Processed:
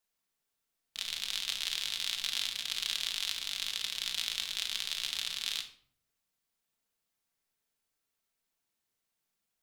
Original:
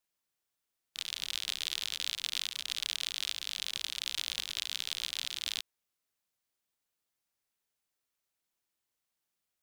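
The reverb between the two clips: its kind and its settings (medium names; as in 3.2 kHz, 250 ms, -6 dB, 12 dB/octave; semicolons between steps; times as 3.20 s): simulated room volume 790 m³, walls furnished, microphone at 1.6 m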